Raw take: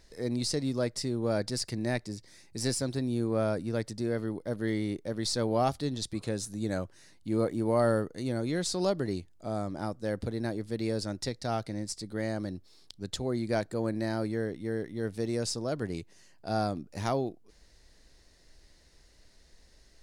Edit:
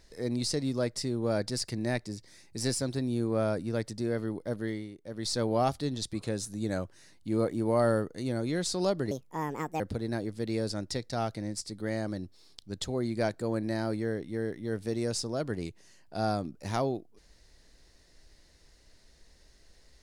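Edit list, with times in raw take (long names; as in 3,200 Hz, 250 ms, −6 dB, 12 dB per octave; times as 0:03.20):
0:04.53–0:05.36: duck −13 dB, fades 0.38 s
0:09.11–0:10.12: play speed 146%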